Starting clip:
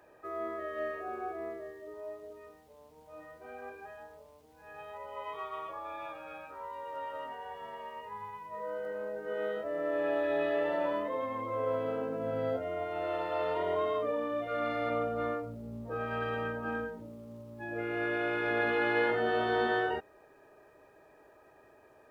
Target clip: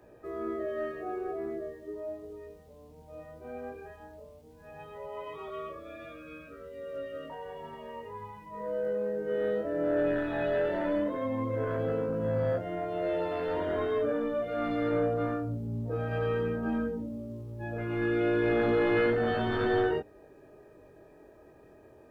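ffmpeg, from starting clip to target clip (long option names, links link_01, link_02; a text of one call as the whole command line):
ffmpeg -i in.wav -filter_complex "[0:a]asettb=1/sr,asplit=3[link_01][link_02][link_03];[link_01]atrim=end=5.484[link_04];[link_02]atrim=start=5.48:end=7.3,asetpts=PTS-STARTPTS,afade=type=in:duration=0.004:curve=qsin,afade=type=out:start_time=1.816:duration=0.004:curve=qsin,asuperstop=centerf=870:order=12:qfactor=2.3[link_05];[link_03]atrim=start=7.296[link_06];[link_04][link_05]acrossfade=duration=0.004:curve1=hsin:curve2=qsin[link_07];[link_07][link_06]acrossfade=duration=0.004:curve1=qsin:curve2=hsin,acrossover=split=750[link_08][link_09];[link_08]aeval=exprs='0.0841*sin(PI/2*2.24*val(0)/0.0841)':channel_layout=same[link_10];[link_10][link_09]amix=inputs=2:normalize=0,flanger=delay=17:depth=7.5:speed=0.16,equalizer=frequency=820:width=0.6:gain=-7.5,volume=3.5dB" out.wav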